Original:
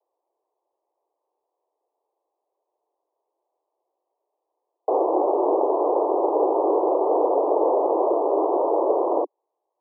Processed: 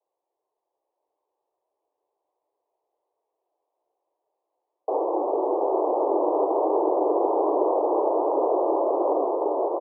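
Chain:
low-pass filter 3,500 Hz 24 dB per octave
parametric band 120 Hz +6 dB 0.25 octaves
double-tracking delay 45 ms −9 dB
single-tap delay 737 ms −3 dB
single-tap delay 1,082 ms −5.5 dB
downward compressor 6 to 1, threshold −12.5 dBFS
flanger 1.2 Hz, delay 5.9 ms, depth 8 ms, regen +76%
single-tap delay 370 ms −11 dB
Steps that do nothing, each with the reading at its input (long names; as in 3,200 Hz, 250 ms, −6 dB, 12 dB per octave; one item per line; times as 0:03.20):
low-pass filter 3,500 Hz: nothing at its input above 1,200 Hz
parametric band 120 Hz: nothing at its input below 250 Hz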